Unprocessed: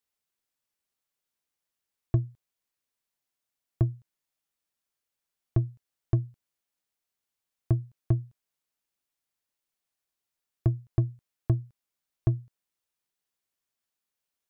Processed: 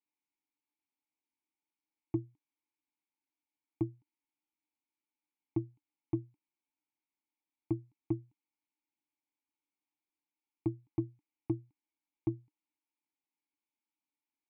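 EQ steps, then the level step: vowel filter u; +8.0 dB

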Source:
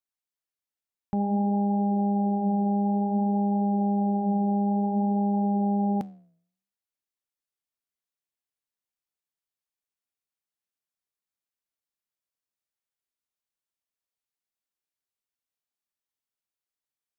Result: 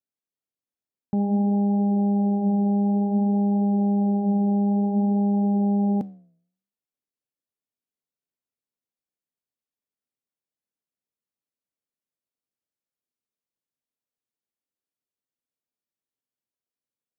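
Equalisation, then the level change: graphic EQ 125/250/500 Hz +8/+10/+8 dB; -7.0 dB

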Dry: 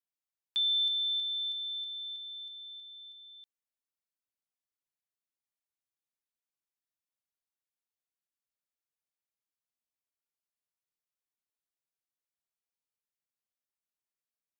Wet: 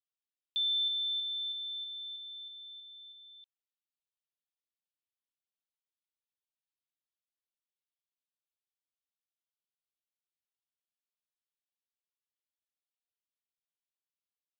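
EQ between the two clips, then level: steep high-pass 2.8 kHz; low-pass 3.8 kHz 24 dB/octave; 0.0 dB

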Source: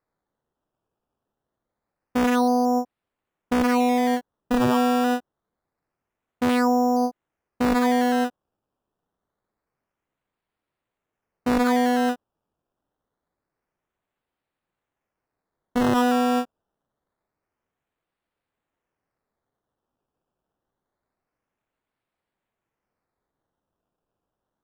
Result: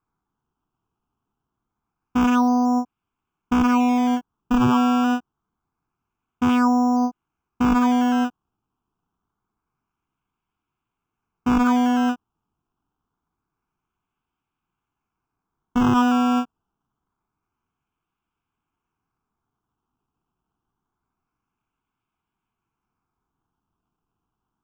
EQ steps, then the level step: treble shelf 2.7 kHz -7 dB; peaking EQ 9.1 kHz -5.5 dB 0.22 oct; static phaser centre 2.8 kHz, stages 8; +6.0 dB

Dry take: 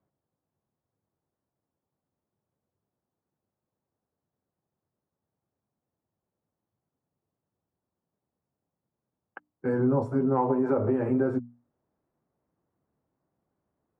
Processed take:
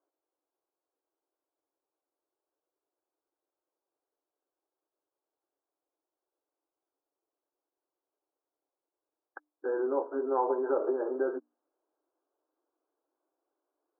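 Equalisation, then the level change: brick-wall FIR band-pass 280–1700 Hz; -2.0 dB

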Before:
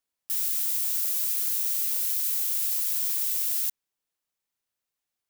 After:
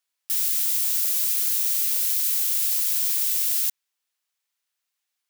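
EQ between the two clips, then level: tilt shelf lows -8.5 dB, about 760 Hz; bass shelf 160 Hz -5.5 dB; treble shelf 5.9 kHz -5 dB; 0.0 dB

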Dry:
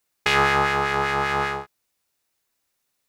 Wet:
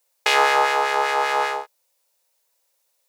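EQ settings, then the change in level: resonant high-pass 530 Hz, resonance Q 5.6; peaking EQ 930 Hz +8.5 dB 0.25 oct; treble shelf 2.3 kHz +11.5 dB; -5.0 dB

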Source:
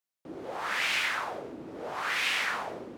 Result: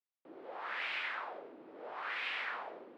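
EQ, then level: band-pass 380–7800 Hz; distance through air 440 m; treble shelf 4.2 kHz +11 dB; -6.5 dB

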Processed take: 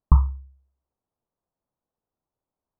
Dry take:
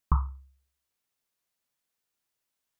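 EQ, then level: low-pass 1 kHz 24 dB/octave; bass shelf 140 Hz +5 dB; +5.5 dB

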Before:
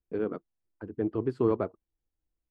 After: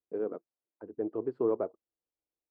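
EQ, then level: band-pass filter 560 Hz, Q 1.3; 0.0 dB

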